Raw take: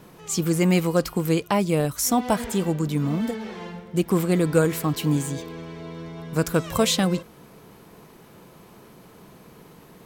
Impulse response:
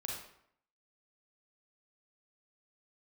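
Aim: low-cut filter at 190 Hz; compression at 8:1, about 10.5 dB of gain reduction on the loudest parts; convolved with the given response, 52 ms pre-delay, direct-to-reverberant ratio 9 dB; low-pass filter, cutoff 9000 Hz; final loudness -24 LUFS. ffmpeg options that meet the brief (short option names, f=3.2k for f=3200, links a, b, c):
-filter_complex "[0:a]highpass=190,lowpass=9k,acompressor=threshold=-26dB:ratio=8,asplit=2[a][b];[1:a]atrim=start_sample=2205,adelay=52[c];[b][c]afir=irnorm=-1:irlink=0,volume=-9.5dB[d];[a][d]amix=inputs=2:normalize=0,volume=7.5dB"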